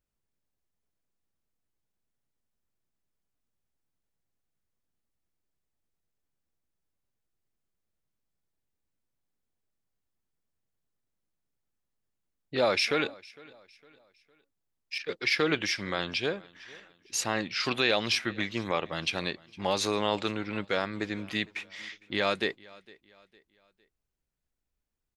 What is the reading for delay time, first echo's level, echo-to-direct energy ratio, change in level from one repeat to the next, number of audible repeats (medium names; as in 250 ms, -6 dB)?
457 ms, -23.5 dB, -23.0 dB, -8.0 dB, 2